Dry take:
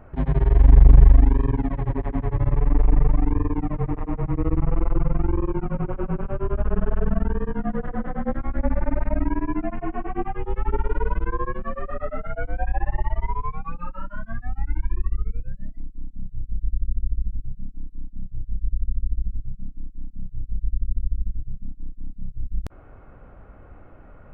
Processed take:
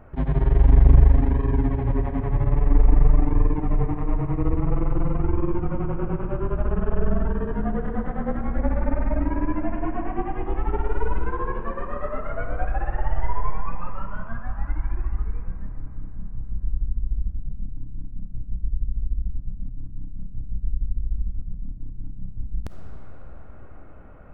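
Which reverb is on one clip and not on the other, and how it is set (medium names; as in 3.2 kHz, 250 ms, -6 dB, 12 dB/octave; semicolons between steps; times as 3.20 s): algorithmic reverb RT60 4.6 s, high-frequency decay 0.55×, pre-delay 10 ms, DRR 5 dB; trim -1 dB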